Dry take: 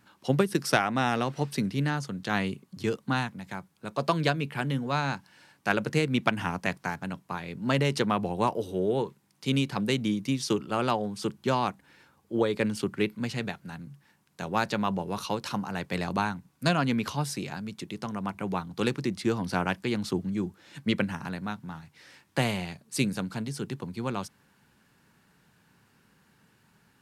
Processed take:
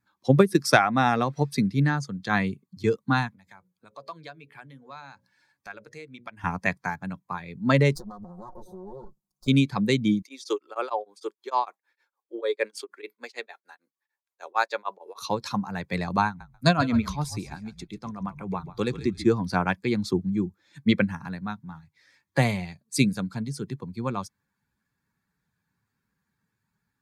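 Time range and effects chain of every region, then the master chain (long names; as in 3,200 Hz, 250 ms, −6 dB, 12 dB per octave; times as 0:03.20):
0:03.34–0:06.44: mains-hum notches 60/120/180/240/300/360/420/480/540/600 Hz + downward compressor 2 to 1, threshold −44 dBFS + dynamic equaliser 170 Hz, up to −7 dB, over −52 dBFS, Q 0.75
0:07.95–0:09.48: lower of the sound and its delayed copy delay 5.5 ms + Butterworth band-reject 2,400 Hz, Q 0.84 + downward compressor 10 to 1, threshold −35 dBFS
0:10.22–0:15.22: high-pass filter 380 Hz 24 dB per octave + tremolo along a rectified sine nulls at 6.6 Hz
0:16.26–0:19.26: echo with shifted repeats 139 ms, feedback 31%, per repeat −43 Hz, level −10 dB + amplitude tremolo 7.1 Hz, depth 42%
whole clip: spectral dynamics exaggerated over time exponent 1.5; high-shelf EQ 8,900 Hz −7 dB; notch filter 2,900 Hz, Q 5.5; level +8 dB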